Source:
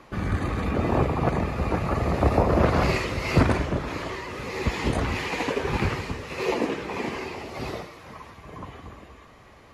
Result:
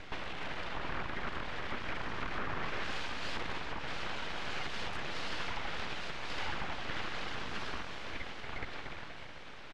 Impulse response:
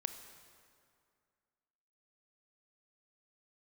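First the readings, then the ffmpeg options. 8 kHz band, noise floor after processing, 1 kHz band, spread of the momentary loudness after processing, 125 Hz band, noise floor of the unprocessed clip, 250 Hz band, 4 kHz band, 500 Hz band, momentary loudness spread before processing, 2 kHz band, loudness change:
−10.5 dB, −46 dBFS, −11.5 dB, 5 LU, −21.5 dB, −50 dBFS, −19.5 dB, −3.5 dB, −18.0 dB, 19 LU, −6.5 dB, −14.0 dB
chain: -filter_complex "[0:a]lowshelf=frequency=390:gain=-8.5,asplit=2[link_01][link_02];[link_02]aecho=0:1:732:0.0944[link_03];[link_01][link_03]amix=inputs=2:normalize=0,asoftclip=type=tanh:threshold=-24dB,acompressor=threshold=-40dB:ratio=6,highpass=frequency=290:width=0.5412,highpass=frequency=290:width=1.3066,aeval=exprs='abs(val(0))':channel_layout=same,lowpass=4000,volume=8dB"

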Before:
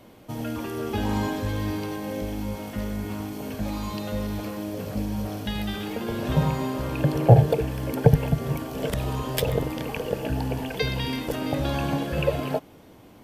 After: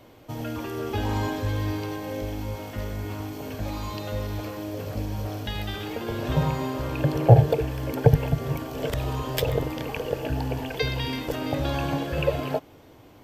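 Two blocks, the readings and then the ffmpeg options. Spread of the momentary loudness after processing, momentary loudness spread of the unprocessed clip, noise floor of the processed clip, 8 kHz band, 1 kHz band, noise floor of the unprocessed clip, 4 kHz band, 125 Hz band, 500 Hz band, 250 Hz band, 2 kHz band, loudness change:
12 LU, 11 LU, −51 dBFS, −2.5 dB, 0.0 dB, −50 dBFS, 0.0 dB, 0.0 dB, 0.0 dB, −2.5 dB, 0.0 dB, −0.5 dB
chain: -af "equalizer=frequency=100:width_type=o:width=0.33:gain=3,equalizer=frequency=200:width_type=o:width=0.33:gain=-11,equalizer=frequency=10000:width_type=o:width=0.33:gain=-9"

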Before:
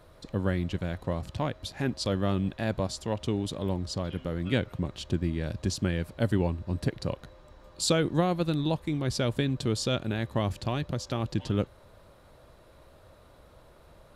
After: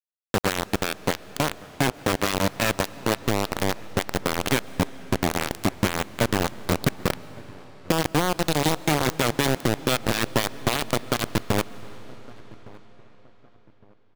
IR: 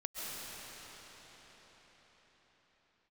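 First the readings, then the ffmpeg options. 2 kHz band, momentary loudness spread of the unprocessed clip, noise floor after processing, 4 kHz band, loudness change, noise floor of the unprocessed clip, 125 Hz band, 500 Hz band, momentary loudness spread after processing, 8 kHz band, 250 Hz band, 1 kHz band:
+11.5 dB, 6 LU, −53 dBFS, +7.5 dB, +5.0 dB, −56 dBFS, +0.5 dB, +4.5 dB, 6 LU, +8.5 dB, +3.0 dB, +10.0 dB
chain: -filter_complex "[0:a]adynamicequalizer=threshold=0.01:dfrequency=130:dqfactor=1.9:tfrequency=130:tqfactor=1.9:attack=5:release=100:ratio=0.375:range=2:mode=boostabove:tftype=bell,asplit=2[link_01][link_02];[link_02]alimiter=limit=-18dB:level=0:latency=1:release=478,volume=-1dB[link_03];[link_01][link_03]amix=inputs=2:normalize=0,acrossover=split=140|2300[link_04][link_05][link_06];[link_04]acompressor=threshold=-36dB:ratio=4[link_07];[link_05]acompressor=threshold=-28dB:ratio=4[link_08];[link_06]acompressor=threshold=-44dB:ratio=4[link_09];[link_07][link_08][link_09]amix=inputs=3:normalize=0,acrusher=bits=3:mix=0:aa=0.000001,asplit=2[link_10][link_11];[link_11]adelay=1161,lowpass=frequency=1400:poles=1,volume=-22.5dB,asplit=2[link_12][link_13];[link_13]adelay=1161,lowpass=frequency=1400:poles=1,volume=0.35[link_14];[link_10][link_12][link_14]amix=inputs=3:normalize=0,asplit=2[link_15][link_16];[1:a]atrim=start_sample=2205[link_17];[link_16][link_17]afir=irnorm=-1:irlink=0,volume=-19dB[link_18];[link_15][link_18]amix=inputs=2:normalize=0,volume=4.5dB"

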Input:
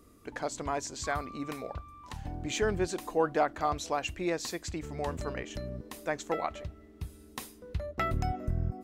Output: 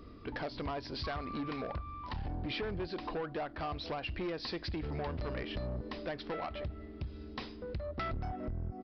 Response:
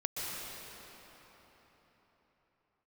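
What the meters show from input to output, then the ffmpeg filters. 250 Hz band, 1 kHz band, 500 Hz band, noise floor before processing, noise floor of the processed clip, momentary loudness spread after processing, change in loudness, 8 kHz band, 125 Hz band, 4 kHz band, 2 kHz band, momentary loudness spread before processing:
−3.0 dB, −7.0 dB, −6.5 dB, −55 dBFS, −49 dBFS, 5 LU, −5.5 dB, below −25 dB, −3.0 dB, −1.0 dB, −5.5 dB, 14 LU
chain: -af "lowshelf=frequency=130:gain=4.5,acompressor=threshold=-35dB:ratio=12,aresample=11025,asoftclip=type=tanh:threshold=-38.5dB,aresample=44100,volume=6dB"

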